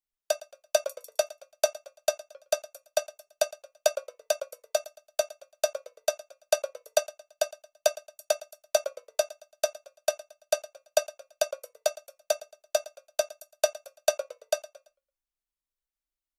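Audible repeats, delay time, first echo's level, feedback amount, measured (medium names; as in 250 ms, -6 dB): 2, 112 ms, -19.5 dB, 40%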